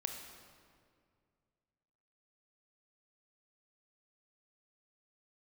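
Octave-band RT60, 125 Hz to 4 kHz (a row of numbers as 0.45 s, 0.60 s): 2.7 s, 2.5 s, 2.3 s, 2.0 s, 1.7 s, 1.4 s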